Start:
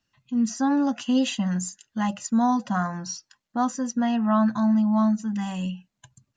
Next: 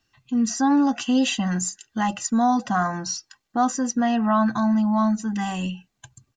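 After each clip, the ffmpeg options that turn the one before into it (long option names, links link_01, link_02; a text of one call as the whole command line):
ffmpeg -i in.wav -filter_complex "[0:a]aecho=1:1:2.6:0.42,asplit=2[link_01][link_02];[link_02]alimiter=limit=-22.5dB:level=0:latency=1:release=28,volume=-1dB[link_03];[link_01][link_03]amix=inputs=2:normalize=0" out.wav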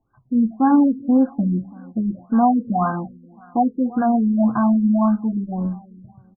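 ffmpeg -i in.wav -af "aecho=1:1:332|664|996:0.0891|0.0348|0.0136,flanger=delay=6.9:depth=7.3:regen=-81:speed=0.56:shape=triangular,afftfilt=real='re*lt(b*sr/1024,470*pow(1700/470,0.5+0.5*sin(2*PI*1.8*pts/sr)))':imag='im*lt(b*sr/1024,470*pow(1700/470,0.5+0.5*sin(2*PI*1.8*pts/sr)))':win_size=1024:overlap=0.75,volume=8.5dB" out.wav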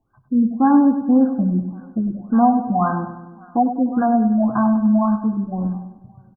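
ffmpeg -i in.wav -af "aecho=1:1:99|198|297|396|495:0.316|0.158|0.0791|0.0395|0.0198,volume=1dB" out.wav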